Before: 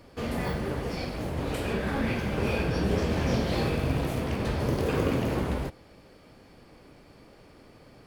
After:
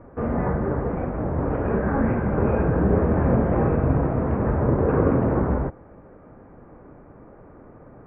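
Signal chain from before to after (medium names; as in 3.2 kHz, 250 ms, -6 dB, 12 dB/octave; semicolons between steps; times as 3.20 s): inverse Chebyshev low-pass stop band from 3.8 kHz, stop band 50 dB; trim +7 dB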